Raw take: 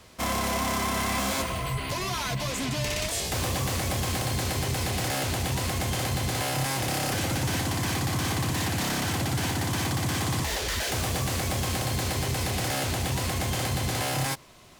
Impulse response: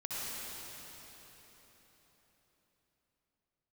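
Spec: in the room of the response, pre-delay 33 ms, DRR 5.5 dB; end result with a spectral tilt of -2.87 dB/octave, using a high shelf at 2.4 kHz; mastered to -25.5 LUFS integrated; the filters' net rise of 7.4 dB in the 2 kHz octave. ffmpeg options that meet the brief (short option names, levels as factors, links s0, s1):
-filter_complex "[0:a]equalizer=f=2000:t=o:g=6,highshelf=f=2400:g=6,asplit=2[s0][s1];[1:a]atrim=start_sample=2205,adelay=33[s2];[s1][s2]afir=irnorm=-1:irlink=0,volume=0.335[s3];[s0][s3]amix=inputs=2:normalize=0,volume=0.708"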